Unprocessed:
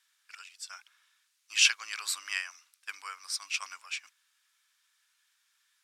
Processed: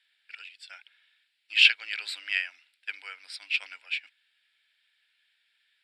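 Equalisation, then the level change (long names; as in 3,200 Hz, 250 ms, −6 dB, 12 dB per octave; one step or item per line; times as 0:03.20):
band-pass filter 250–4,700 Hz
phaser with its sweep stopped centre 2,700 Hz, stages 4
+7.0 dB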